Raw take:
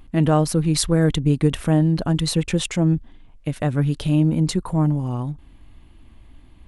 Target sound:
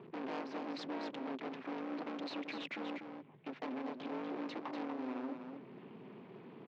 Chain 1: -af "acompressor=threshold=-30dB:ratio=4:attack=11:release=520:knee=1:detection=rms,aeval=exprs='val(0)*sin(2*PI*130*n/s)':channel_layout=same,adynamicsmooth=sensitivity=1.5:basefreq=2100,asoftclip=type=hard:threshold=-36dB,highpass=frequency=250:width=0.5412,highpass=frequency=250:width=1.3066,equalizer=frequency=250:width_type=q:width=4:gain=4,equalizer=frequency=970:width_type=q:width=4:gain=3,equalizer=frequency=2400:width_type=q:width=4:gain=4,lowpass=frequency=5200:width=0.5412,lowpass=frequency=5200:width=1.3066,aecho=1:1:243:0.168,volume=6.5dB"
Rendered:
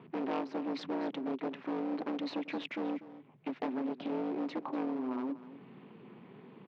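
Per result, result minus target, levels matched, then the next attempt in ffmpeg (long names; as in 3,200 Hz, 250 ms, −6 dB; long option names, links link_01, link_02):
echo-to-direct −9 dB; hard clipping: distortion −5 dB
-af "acompressor=threshold=-30dB:ratio=4:attack=11:release=520:knee=1:detection=rms,aeval=exprs='val(0)*sin(2*PI*130*n/s)':channel_layout=same,adynamicsmooth=sensitivity=1.5:basefreq=2100,asoftclip=type=hard:threshold=-36dB,highpass=frequency=250:width=0.5412,highpass=frequency=250:width=1.3066,equalizer=frequency=250:width_type=q:width=4:gain=4,equalizer=frequency=970:width_type=q:width=4:gain=3,equalizer=frequency=2400:width_type=q:width=4:gain=4,lowpass=frequency=5200:width=0.5412,lowpass=frequency=5200:width=1.3066,aecho=1:1:243:0.473,volume=6.5dB"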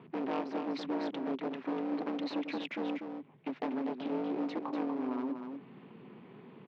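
hard clipping: distortion −5 dB
-af "acompressor=threshold=-30dB:ratio=4:attack=11:release=520:knee=1:detection=rms,aeval=exprs='val(0)*sin(2*PI*130*n/s)':channel_layout=same,adynamicsmooth=sensitivity=1.5:basefreq=2100,asoftclip=type=hard:threshold=-45dB,highpass=frequency=250:width=0.5412,highpass=frequency=250:width=1.3066,equalizer=frequency=250:width_type=q:width=4:gain=4,equalizer=frequency=970:width_type=q:width=4:gain=3,equalizer=frequency=2400:width_type=q:width=4:gain=4,lowpass=frequency=5200:width=0.5412,lowpass=frequency=5200:width=1.3066,aecho=1:1:243:0.473,volume=6.5dB"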